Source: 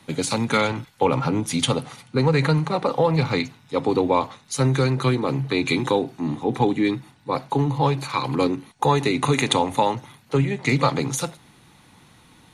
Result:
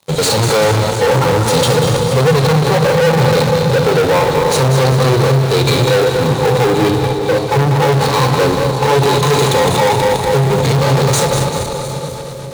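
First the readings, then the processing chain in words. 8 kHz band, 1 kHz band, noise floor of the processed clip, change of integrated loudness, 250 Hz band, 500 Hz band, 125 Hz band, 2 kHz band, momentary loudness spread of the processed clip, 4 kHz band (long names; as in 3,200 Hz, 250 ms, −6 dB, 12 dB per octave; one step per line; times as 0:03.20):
+11.5 dB, +9.0 dB, −22 dBFS, +10.0 dB, +5.5 dB, +12.0 dB, +11.0 dB, +9.5 dB, 3 LU, +10.5 dB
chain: feedback delay that plays each chunk backwards 120 ms, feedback 82%, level −13.5 dB
octave-band graphic EQ 125/250/500/1,000/2,000/4,000/8,000 Hz +5/−10/+11/+7/−9/+9/+10 dB
in parallel at −8.5 dB: comparator with hysteresis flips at −22 dBFS
on the sum: brickwall limiter −4.5 dBFS, peak gain reduction 8 dB
harmonic and percussive parts rebalanced percussive −17 dB
leveller curve on the samples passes 5
high-pass filter 72 Hz
on a send: echo with a time of its own for lows and highs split 660 Hz, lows 511 ms, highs 194 ms, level −8.5 dB
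on the sum: level −4.5 dB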